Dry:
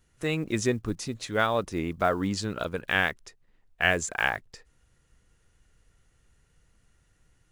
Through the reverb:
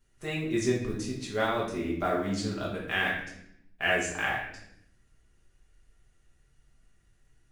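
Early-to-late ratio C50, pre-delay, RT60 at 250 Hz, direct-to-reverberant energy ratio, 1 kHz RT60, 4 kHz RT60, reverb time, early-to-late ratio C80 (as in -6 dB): 4.0 dB, 5 ms, 1.1 s, -4.5 dB, 0.65 s, 0.65 s, 0.75 s, 7.5 dB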